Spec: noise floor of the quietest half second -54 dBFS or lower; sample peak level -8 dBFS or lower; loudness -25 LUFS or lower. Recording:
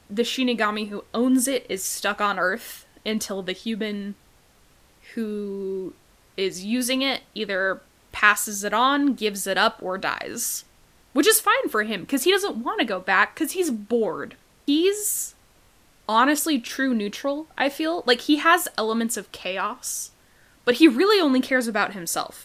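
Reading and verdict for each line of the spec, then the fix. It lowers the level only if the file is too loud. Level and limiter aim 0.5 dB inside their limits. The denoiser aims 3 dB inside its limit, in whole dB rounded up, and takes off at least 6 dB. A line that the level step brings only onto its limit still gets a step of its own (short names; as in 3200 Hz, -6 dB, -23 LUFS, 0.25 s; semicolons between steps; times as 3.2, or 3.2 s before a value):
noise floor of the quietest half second -57 dBFS: OK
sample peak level -1.5 dBFS: fail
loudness -23.0 LUFS: fail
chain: gain -2.5 dB; limiter -8.5 dBFS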